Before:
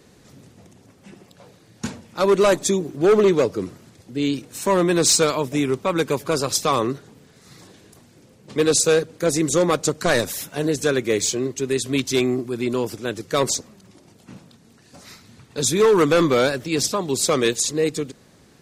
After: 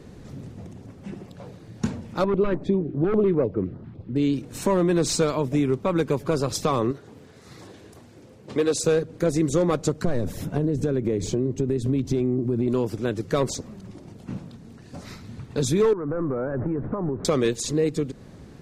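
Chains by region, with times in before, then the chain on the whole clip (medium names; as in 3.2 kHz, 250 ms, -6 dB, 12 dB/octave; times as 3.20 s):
2.24–4.16 s: distance through air 420 m + step-sequenced notch 10 Hz 510–4600 Hz
6.91–8.82 s: high-pass 84 Hz + peaking EQ 160 Hz -9.5 dB 1.4 oct
10.04–12.68 s: tilt shelf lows +7 dB, about 740 Hz + compression 4:1, threshold -21 dBFS
15.93–17.25 s: jump at every zero crossing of -32.5 dBFS + steep low-pass 1.6 kHz + compression 8:1, threshold -27 dBFS
whole clip: tilt EQ -2.5 dB/octave; compression 2:1, threshold -28 dBFS; trim +3 dB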